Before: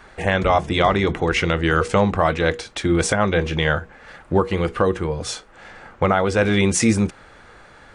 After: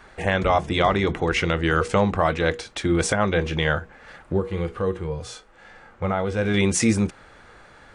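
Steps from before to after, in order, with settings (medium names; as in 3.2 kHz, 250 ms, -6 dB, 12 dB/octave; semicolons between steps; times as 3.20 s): 4.33–6.54 s: harmonic-percussive split percussive -13 dB; trim -2.5 dB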